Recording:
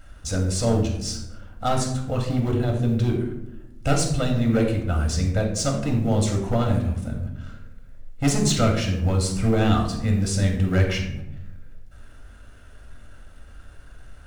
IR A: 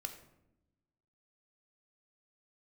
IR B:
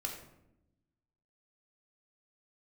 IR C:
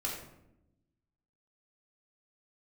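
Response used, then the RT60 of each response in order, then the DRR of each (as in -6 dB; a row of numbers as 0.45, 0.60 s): B; 0.90, 0.85, 0.85 s; 5.5, 0.5, -4.0 dB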